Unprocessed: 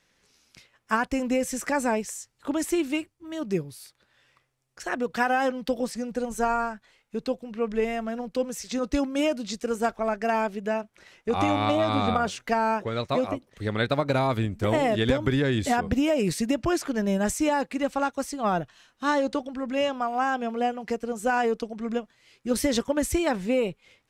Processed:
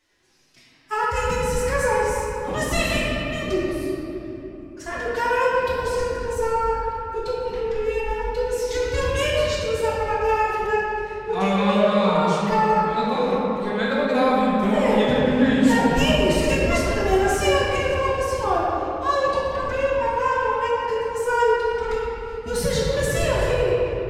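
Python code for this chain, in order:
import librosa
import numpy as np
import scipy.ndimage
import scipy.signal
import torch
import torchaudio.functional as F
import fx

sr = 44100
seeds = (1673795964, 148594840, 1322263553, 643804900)

y = fx.pitch_keep_formants(x, sr, semitones=11.5)
y = fx.room_shoebox(y, sr, seeds[0], volume_m3=190.0, walls='hard', distance_m=1.0)
y = y * 10.0 ** (-2.5 / 20.0)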